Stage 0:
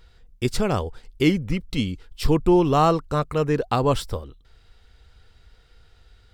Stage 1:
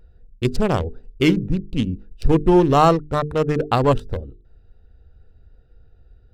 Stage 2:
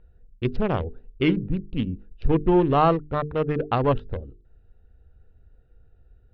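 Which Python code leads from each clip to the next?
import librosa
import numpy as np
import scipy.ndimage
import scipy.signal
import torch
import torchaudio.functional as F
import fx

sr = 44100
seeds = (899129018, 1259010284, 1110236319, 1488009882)

y1 = fx.wiener(x, sr, points=41)
y1 = fx.hum_notches(y1, sr, base_hz=50, count=9)
y1 = y1 * 10.0 ** (4.5 / 20.0)
y2 = scipy.signal.sosfilt(scipy.signal.butter(4, 3300.0, 'lowpass', fs=sr, output='sos'), y1)
y2 = y2 * 10.0 ** (-4.5 / 20.0)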